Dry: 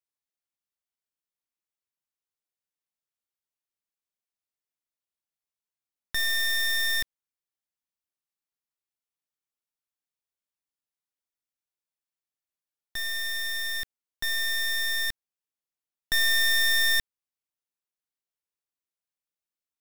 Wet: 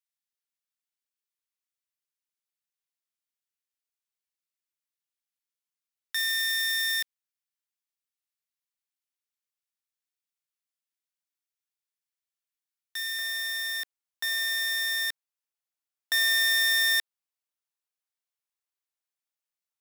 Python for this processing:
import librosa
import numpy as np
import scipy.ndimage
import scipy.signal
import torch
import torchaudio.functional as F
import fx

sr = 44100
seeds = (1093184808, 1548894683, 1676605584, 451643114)

y = fx.highpass(x, sr, hz=fx.steps((0.0, 1400.0), (13.19, 610.0)), slope=12)